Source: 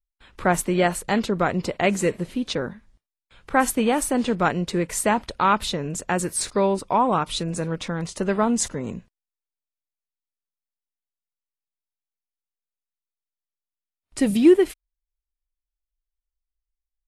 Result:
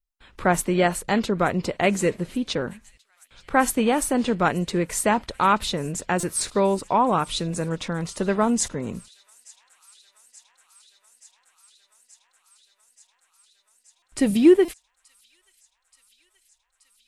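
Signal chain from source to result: feedback echo behind a high-pass 878 ms, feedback 81%, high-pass 3.3 kHz, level -22 dB; buffer glitch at 6.20/13.99/14.65 s, samples 128, times 10

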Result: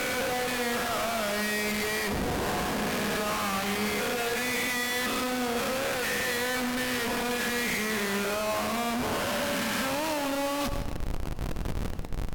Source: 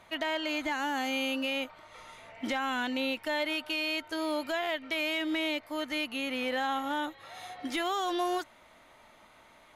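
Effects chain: reverse spectral sustain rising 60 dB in 1.02 s; high-pass 250 Hz 24 dB/octave; treble shelf 6.7 kHz +3 dB; in parallel at +3 dB: compressor with a negative ratio -34 dBFS, ratio -0.5; on the sum: Schmitt trigger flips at -37 dBFS; tape speed -21%; crossover distortion -46.5 dBFS; on a send at -8.5 dB: reverberation RT60 1.0 s, pre-delay 94 ms; on the sum: crackle 52 per s -35 dBFS; trim -2 dB

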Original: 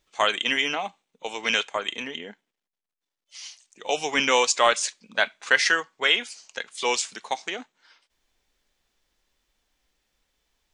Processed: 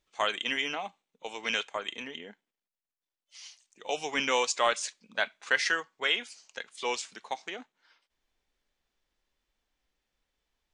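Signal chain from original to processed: treble shelf 5.5 kHz -2.5 dB, from 6.76 s -7.5 dB; trim -6.5 dB

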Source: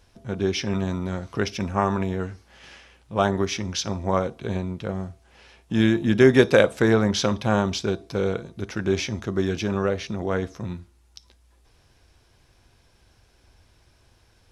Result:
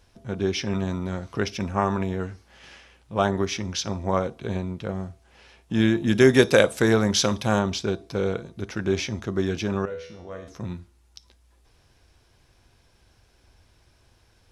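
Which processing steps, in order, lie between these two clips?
6.07–7.59 s: treble shelf 5.2 kHz +11.5 dB; 9.85–10.48 s: feedback comb 82 Hz, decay 0.6 s, harmonics all, mix 90%; trim -1 dB

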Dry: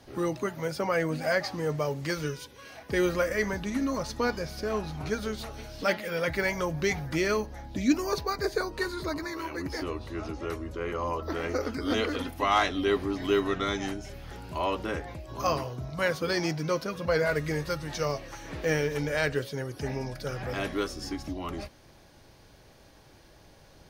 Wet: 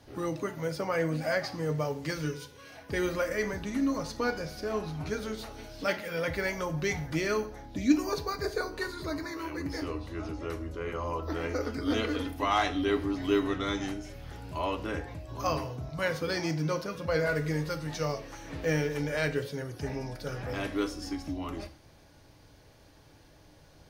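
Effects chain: peaking EQ 96 Hz +3.5 dB 1.5 oct; FDN reverb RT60 0.49 s, low-frequency decay 1×, high-frequency decay 0.9×, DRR 7.5 dB; trim -3.5 dB

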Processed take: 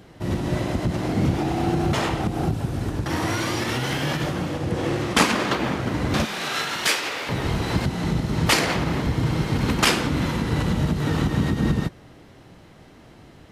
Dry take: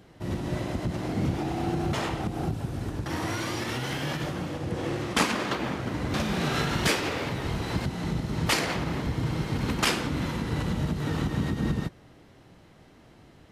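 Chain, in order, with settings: 6.25–7.29 s: high-pass 1.2 kHz 6 dB/octave; trim +6 dB

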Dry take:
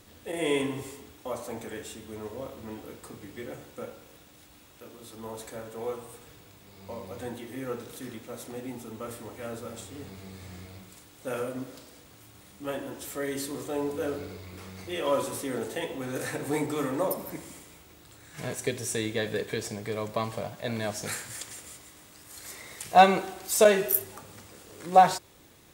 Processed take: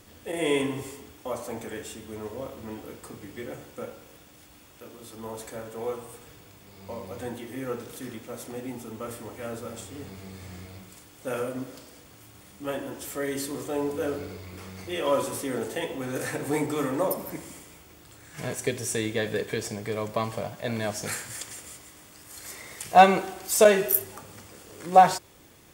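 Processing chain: band-stop 3.9 kHz, Q 13; trim +2 dB

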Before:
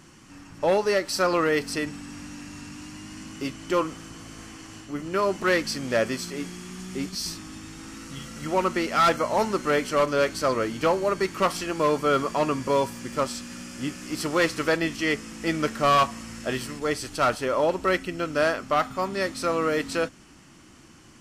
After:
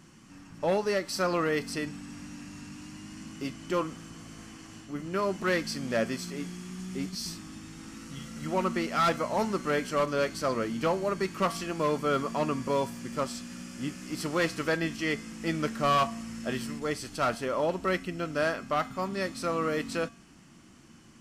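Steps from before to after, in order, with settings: peaking EQ 180 Hz +6 dB 0.77 oct; feedback comb 230 Hz, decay 0.51 s, harmonics odd, mix 60%; trim +2 dB

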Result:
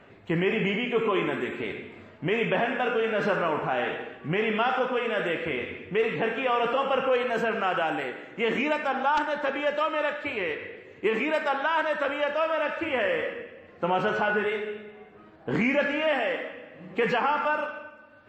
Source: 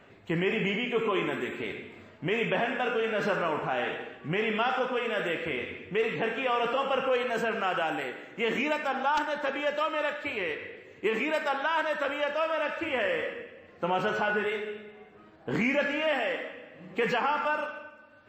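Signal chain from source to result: treble shelf 5.2 kHz -9.5 dB; trim +3 dB

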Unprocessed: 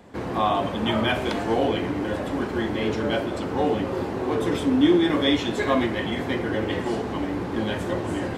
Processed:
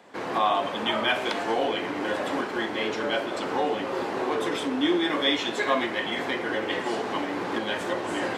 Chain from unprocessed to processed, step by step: recorder AGC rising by 10 dB/s; frequency weighting A

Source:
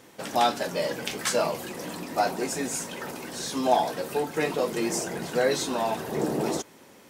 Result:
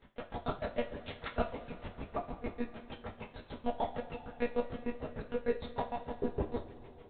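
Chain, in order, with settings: dynamic bell 2.6 kHz, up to -6 dB, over -44 dBFS, Q 1; granulator 83 ms, grains 6.6 per s, spray 12 ms, pitch spread up and down by 0 st; monotone LPC vocoder at 8 kHz 240 Hz; two-slope reverb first 0.25 s, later 3.5 s, from -19 dB, DRR 2 dB; trim -3.5 dB

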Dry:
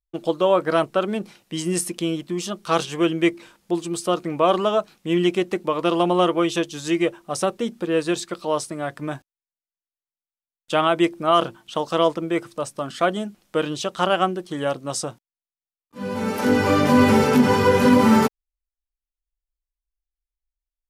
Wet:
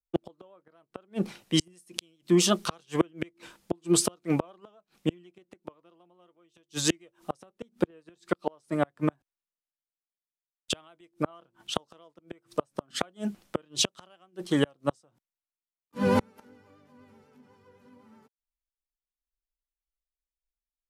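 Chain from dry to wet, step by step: vibrato 8 Hz 33 cents; inverted gate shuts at -16 dBFS, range -37 dB; three bands expanded up and down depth 40%; trim +3.5 dB

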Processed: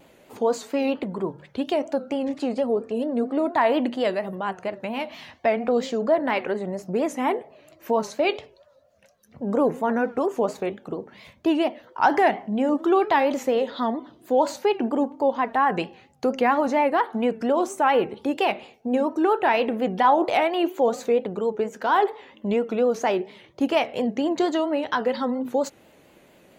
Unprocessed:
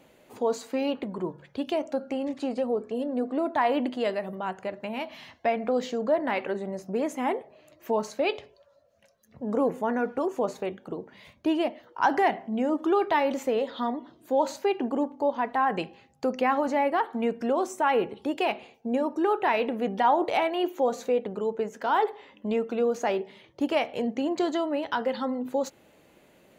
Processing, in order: vibrato 4.3 Hz 93 cents; trim +4 dB

